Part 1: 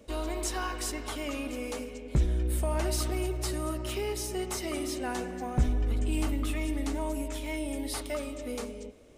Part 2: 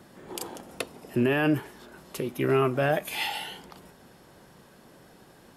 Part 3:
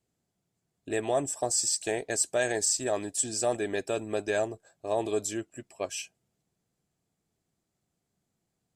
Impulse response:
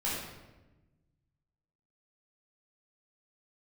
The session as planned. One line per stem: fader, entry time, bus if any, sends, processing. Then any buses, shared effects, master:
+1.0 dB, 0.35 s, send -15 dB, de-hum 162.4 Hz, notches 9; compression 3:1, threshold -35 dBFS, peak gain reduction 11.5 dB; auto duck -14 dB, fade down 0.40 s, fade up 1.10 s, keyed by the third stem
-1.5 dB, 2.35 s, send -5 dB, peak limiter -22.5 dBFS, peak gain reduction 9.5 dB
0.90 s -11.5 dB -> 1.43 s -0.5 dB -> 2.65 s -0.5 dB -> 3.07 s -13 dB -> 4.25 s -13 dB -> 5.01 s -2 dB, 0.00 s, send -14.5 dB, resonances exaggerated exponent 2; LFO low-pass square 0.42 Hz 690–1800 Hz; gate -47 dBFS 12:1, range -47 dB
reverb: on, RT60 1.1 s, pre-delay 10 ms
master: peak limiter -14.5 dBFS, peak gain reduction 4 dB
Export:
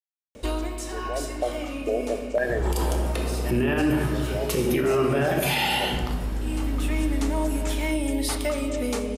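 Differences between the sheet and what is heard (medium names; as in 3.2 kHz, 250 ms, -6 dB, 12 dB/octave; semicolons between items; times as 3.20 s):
stem 1 +1.0 dB -> +10.0 dB; stem 2 -1.5 dB -> +7.0 dB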